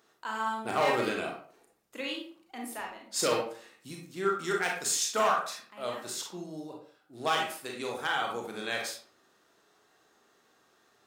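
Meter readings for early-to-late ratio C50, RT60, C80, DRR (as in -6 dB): 4.0 dB, 0.45 s, 9.0 dB, -0.5 dB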